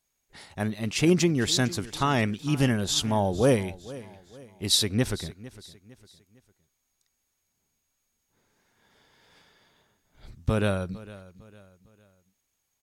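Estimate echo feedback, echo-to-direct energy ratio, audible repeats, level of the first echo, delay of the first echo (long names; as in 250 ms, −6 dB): 39%, −18.0 dB, 3, −18.5 dB, 455 ms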